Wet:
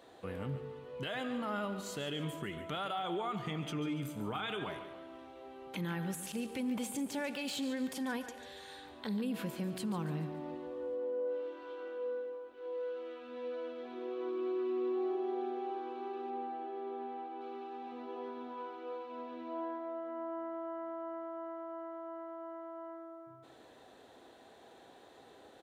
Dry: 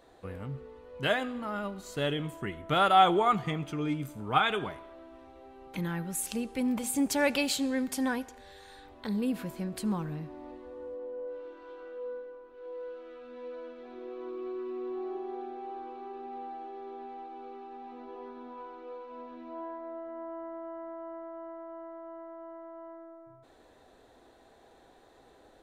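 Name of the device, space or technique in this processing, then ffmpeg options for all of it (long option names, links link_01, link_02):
broadcast voice chain: -filter_complex "[0:a]highpass=110,deesser=0.75,acompressor=threshold=-31dB:ratio=4,equalizer=frequency=3100:width_type=o:width=0.52:gain=4.5,alimiter=level_in=6.5dB:limit=-24dB:level=0:latency=1:release=63,volume=-6.5dB,asettb=1/sr,asplit=3[link_01][link_02][link_03];[link_01]atrim=end=16.304[link_04];[link_02]atrim=start=16.3:end=17.41,asetpts=PTS-STARTPTS,afade=type=in:duration=0.004:curve=qsin,afade=type=out:start_time=1.106:duration=0.004:curve=qsin,aemphasis=mode=reproduction:type=75fm[link_05];[link_03]atrim=start=17.406[link_06];[link_04][link_05]acrossfade=duration=0.004:curve1=hsin:curve2=qsin[link_07];[link_07][link_06]acrossfade=duration=0.004:curve1=qsin:curve2=hsin,aecho=1:1:143|286|429|572:0.237|0.104|0.0459|0.0202,volume=1dB"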